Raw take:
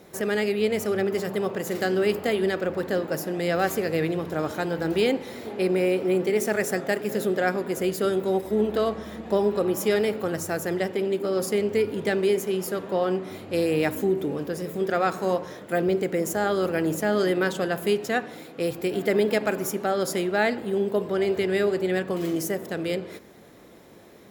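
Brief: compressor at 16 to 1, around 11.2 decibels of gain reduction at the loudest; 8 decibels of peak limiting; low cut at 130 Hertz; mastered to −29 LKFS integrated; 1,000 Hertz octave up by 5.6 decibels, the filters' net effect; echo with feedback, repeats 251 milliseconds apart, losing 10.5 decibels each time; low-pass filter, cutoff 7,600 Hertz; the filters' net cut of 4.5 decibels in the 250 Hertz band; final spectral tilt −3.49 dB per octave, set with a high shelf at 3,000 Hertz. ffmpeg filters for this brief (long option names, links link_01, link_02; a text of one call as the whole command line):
ffmpeg -i in.wav -af "highpass=130,lowpass=7600,equalizer=frequency=250:width_type=o:gain=-8,equalizer=frequency=1000:width_type=o:gain=8,highshelf=frequency=3000:gain=7,acompressor=threshold=-26dB:ratio=16,alimiter=limit=-21dB:level=0:latency=1,aecho=1:1:251|502|753:0.299|0.0896|0.0269,volume=3dB" out.wav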